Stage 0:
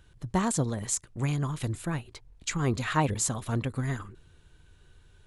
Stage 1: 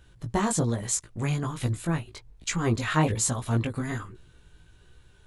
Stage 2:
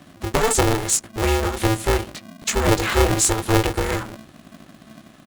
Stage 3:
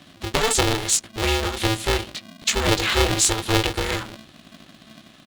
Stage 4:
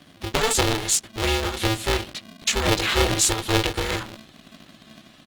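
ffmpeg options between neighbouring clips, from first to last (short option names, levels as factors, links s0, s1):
-af "flanger=delay=16.5:depth=2.5:speed=1.2,volume=1.88"
-filter_complex "[0:a]acrossover=split=320|4800[s0][s1][s2];[s0]aecho=1:1:74|148|222:0.126|0.0478|0.0182[s3];[s1]alimiter=limit=0.075:level=0:latency=1:release=210[s4];[s3][s4][s2]amix=inputs=3:normalize=0,aeval=exprs='val(0)*sgn(sin(2*PI*220*n/s))':c=same,volume=2.51"
-af "equalizer=f=3600:w=0.92:g=10,volume=0.668"
-af "volume=0.891" -ar 48000 -c:a libopus -b:a 24k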